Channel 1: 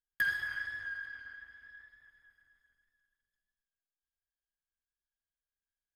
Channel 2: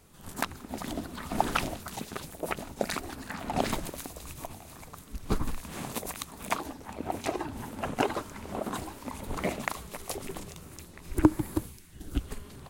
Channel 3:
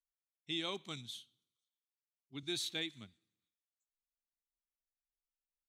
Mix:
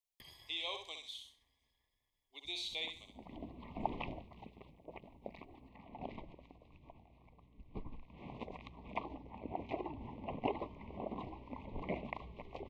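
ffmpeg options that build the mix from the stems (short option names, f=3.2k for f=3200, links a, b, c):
-filter_complex "[0:a]volume=-8.5dB[a];[1:a]lowpass=f=2.8k:w=0.5412,lowpass=f=2.8k:w=1.3066,aeval=exprs='val(0)+0.00355*(sin(2*PI*60*n/s)+sin(2*PI*2*60*n/s)/2+sin(2*PI*3*60*n/s)/3+sin(2*PI*4*60*n/s)/4+sin(2*PI*5*60*n/s)/5)':c=same,adelay=2450,volume=-1.5dB,afade=t=out:st=4.01:d=0.61:silence=0.446684,afade=t=in:st=8.07:d=0.36:silence=0.375837[b];[2:a]highpass=f=520:w=0.5412,highpass=f=520:w=1.3066,volume=1dB,asplit=3[c][d][e];[d]volume=-6.5dB[f];[e]apad=whole_len=667827[g];[b][g]sidechaincompress=threshold=-45dB:ratio=8:attack=12:release=828[h];[f]aecho=0:1:65|130|195|260:1|0.28|0.0784|0.022[i];[a][h][c][i]amix=inputs=4:normalize=0,acrossover=split=4400[j][k];[k]acompressor=threshold=-59dB:ratio=4:attack=1:release=60[l];[j][l]amix=inputs=2:normalize=0,asuperstop=centerf=1500:order=8:qfactor=1.6"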